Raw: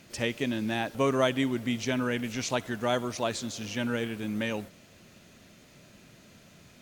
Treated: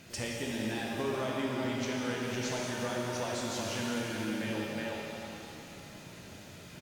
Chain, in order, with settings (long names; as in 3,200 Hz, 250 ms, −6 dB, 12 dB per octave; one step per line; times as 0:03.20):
parametric band 94 Hz +3.5 dB 0.41 octaves
far-end echo of a speakerphone 370 ms, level −9 dB
downward compressor, threshold −36 dBFS, peak gain reduction 15.5 dB
reverb with rising layers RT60 3 s, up +7 semitones, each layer −8 dB, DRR −3 dB